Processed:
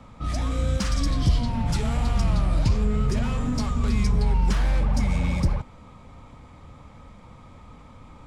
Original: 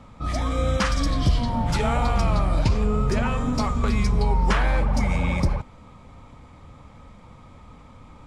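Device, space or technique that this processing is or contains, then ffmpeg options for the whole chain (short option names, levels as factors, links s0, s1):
one-band saturation: -filter_complex "[0:a]acrossover=split=280|4100[s0][s1][s2];[s1]asoftclip=type=tanh:threshold=0.02[s3];[s0][s3][s2]amix=inputs=3:normalize=0"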